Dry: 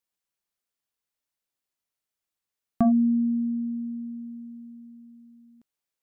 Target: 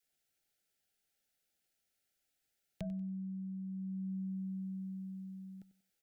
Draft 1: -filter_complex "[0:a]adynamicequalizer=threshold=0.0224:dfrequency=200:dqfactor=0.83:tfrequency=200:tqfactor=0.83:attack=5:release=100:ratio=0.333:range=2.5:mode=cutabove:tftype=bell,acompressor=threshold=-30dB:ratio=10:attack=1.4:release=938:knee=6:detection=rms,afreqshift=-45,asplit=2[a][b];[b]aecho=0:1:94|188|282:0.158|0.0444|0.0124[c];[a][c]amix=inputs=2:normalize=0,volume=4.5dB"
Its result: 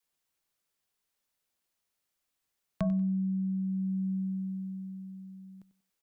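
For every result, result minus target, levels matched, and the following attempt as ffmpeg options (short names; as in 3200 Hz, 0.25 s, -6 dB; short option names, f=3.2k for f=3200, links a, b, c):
compressor: peak gain reduction -11.5 dB; 1000 Hz band +6.0 dB
-filter_complex "[0:a]adynamicequalizer=threshold=0.0224:dfrequency=200:dqfactor=0.83:tfrequency=200:tqfactor=0.83:attack=5:release=100:ratio=0.333:range=2.5:mode=cutabove:tftype=bell,acompressor=threshold=-41dB:ratio=10:attack=1.4:release=938:knee=6:detection=rms,afreqshift=-45,asplit=2[a][b];[b]aecho=0:1:94|188|282:0.158|0.0444|0.0124[c];[a][c]amix=inputs=2:normalize=0,volume=4.5dB"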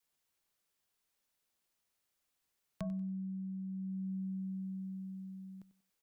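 1000 Hz band +5.0 dB
-filter_complex "[0:a]adynamicequalizer=threshold=0.0224:dfrequency=200:dqfactor=0.83:tfrequency=200:tqfactor=0.83:attack=5:release=100:ratio=0.333:range=2.5:mode=cutabove:tftype=bell,asuperstop=centerf=1100:order=20:qfactor=2.6,acompressor=threshold=-41dB:ratio=10:attack=1.4:release=938:knee=6:detection=rms,afreqshift=-45,asplit=2[a][b];[b]aecho=0:1:94|188|282:0.158|0.0444|0.0124[c];[a][c]amix=inputs=2:normalize=0,volume=4.5dB"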